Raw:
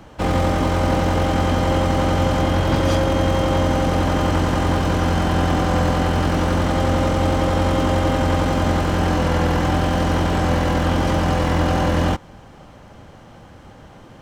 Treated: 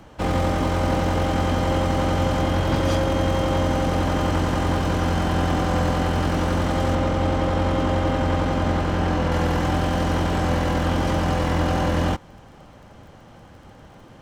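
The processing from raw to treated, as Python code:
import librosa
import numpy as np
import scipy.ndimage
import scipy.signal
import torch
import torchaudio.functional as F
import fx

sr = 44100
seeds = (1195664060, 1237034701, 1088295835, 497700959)

y = fx.high_shelf(x, sr, hz=7000.0, db=-10.5, at=(6.95, 9.32))
y = fx.dmg_crackle(y, sr, seeds[0], per_s=24.0, level_db=-41.0)
y = y * librosa.db_to_amplitude(-3.0)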